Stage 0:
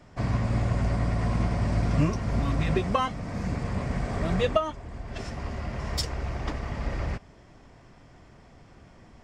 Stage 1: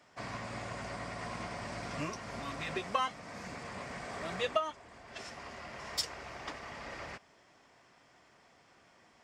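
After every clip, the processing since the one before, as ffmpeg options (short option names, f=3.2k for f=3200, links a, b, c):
-af "highpass=f=1k:p=1,volume=-2.5dB"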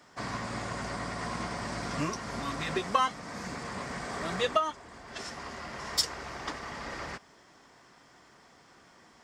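-af "equalizer=f=100:t=o:w=0.67:g=-4,equalizer=f=630:t=o:w=0.67:g=-5,equalizer=f=2.5k:t=o:w=0.67:g=-6,volume=7.5dB"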